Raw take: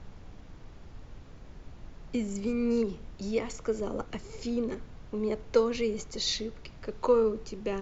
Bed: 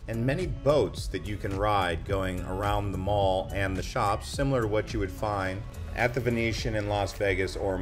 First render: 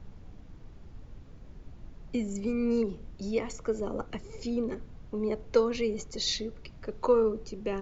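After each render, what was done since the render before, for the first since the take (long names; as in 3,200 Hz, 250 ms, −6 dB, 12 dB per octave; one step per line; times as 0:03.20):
broadband denoise 6 dB, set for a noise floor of −50 dBFS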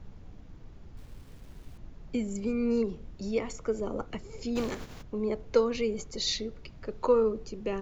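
0:00.97–0:01.78: bit-depth reduction 10 bits, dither none
0:04.55–0:05.01: compressing power law on the bin magnitudes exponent 0.58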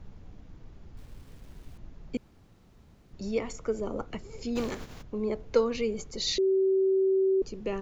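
0:02.17–0:03.13: fill with room tone
0:06.38–0:07.42: beep over 383 Hz −21 dBFS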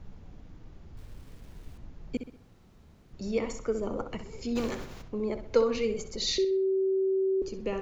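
feedback echo with a low-pass in the loop 64 ms, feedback 42%, low-pass 4,300 Hz, level −9 dB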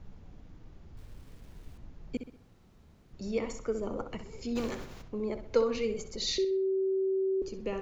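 level −2.5 dB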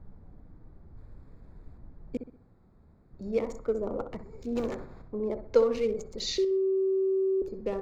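adaptive Wiener filter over 15 samples
dynamic equaliser 550 Hz, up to +5 dB, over −43 dBFS, Q 1.1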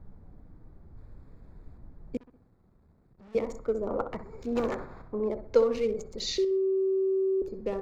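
0:02.18–0:03.35: tube saturation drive 51 dB, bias 0.6
0:03.88–0:05.29: parametric band 1,200 Hz +8 dB 2 octaves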